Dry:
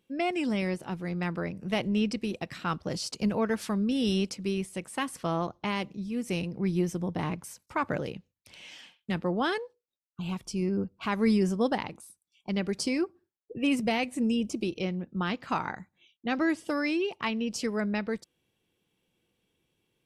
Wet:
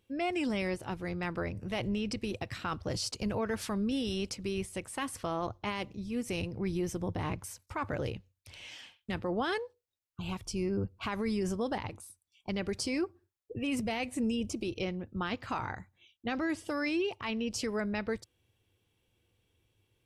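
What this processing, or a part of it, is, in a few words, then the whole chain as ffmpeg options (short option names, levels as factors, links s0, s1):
car stereo with a boomy subwoofer: -af "lowshelf=f=130:t=q:w=3:g=7,alimiter=level_in=1.06:limit=0.0631:level=0:latency=1:release=30,volume=0.944"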